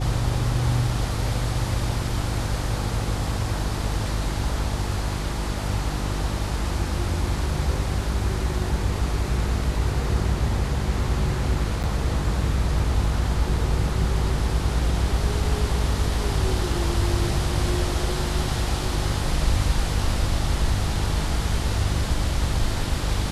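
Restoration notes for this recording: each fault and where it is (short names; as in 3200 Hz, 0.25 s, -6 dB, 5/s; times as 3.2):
hum 50 Hz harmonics 7 -28 dBFS
11.83–11.84 gap 8.2 ms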